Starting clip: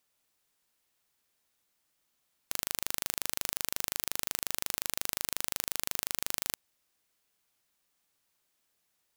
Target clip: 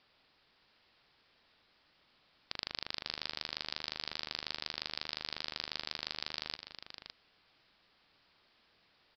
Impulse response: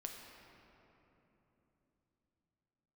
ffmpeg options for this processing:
-af "alimiter=limit=-7dB:level=0:latency=1,aresample=11025,asoftclip=type=tanh:threshold=-33.5dB,aresample=44100,aecho=1:1:182|561:0.106|0.316,volume=12.5dB"

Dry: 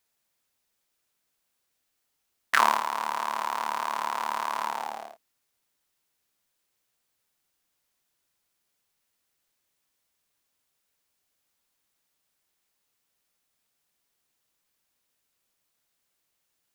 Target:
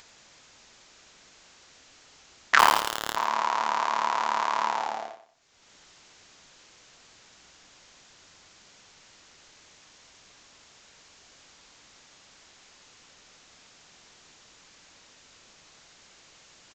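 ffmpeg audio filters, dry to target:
ffmpeg -i in.wav -filter_complex "[0:a]aresample=16000,aresample=44100,acompressor=mode=upward:threshold=-40dB:ratio=2.5,asettb=1/sr,asplit=3[link_01][link_02][link_03];[link_01]atrim=end=2.594[link_04];[link_02]atrim=start=2.59:end=3.16,asetpts=PTS-STARTPTS,afade=type=in:duration=0.004:curve=qsin,afade=type=out:start_time=0.566:duration=0.004:curve=qsin,aeval=exprs='val(0)*gte(abs(val(0)),0.106)':channel_layout=same[link_05];[link_03]atrim=start=3.156[link_06];[link_04][link_05]acrossfade=duration=0.004:curve1=hsin:curve2=qsin[link_07];[link_07][link_06]acrossfade=duration=0.004:curve1=qsin:curve2=hsin,asplit=2[link_08][link_09];[link_09]aecho=0:1:91|182|273:0.282|0.0874|0.0271[link_10];[link_08][link_10]amix=inputs=2:normalize=0,volume=3.5dB" out.wav

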